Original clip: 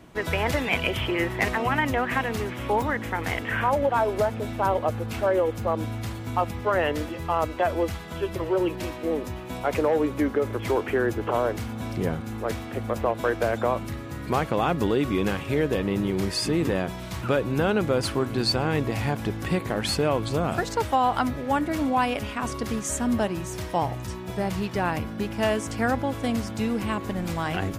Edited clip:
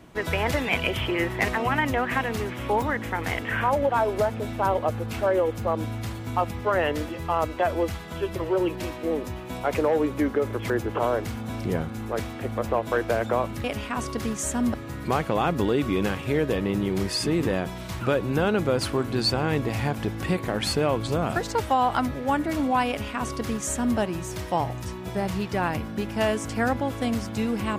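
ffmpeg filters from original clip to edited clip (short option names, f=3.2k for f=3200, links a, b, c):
-filter_complex "[0:a]asplit=4[a][b][c][d];[a]atrim=end=10.702[e];[b]atrim=start=11.018:end=13.962[f];[c]atrim=start=22.098:end=23.202[g];[d]atrim=start=13.958[h];[e][f]acrossfade=d=0.004:c1=hsin:c2=hsin[i];[i][g]acrossfade=d=0.004:c1=hsin:c2=hsin[j];[j][h]acrossfade=d=0.004:c1=hsin:c2=hsin"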